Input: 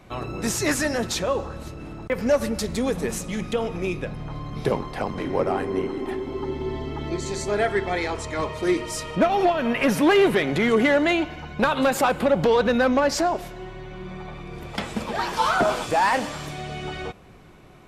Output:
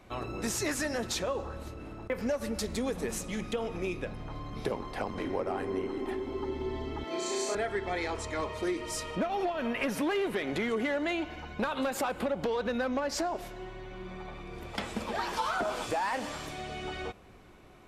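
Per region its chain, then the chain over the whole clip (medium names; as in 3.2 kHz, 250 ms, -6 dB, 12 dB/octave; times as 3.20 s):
1.42–2.17 s: peaking EQ 6.1 kHz -3.5 dB 1.6 oct + doubling 29 ms -13 dB
7.04–7.55 s: high-pass 370 Hz + flutter echo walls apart 5.7 m, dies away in 1.3 s
whole clip: peaking EQ 150 Hz -8.5 dB 0.41 oct; compression, threshold -23 dBFS; trim -5 dB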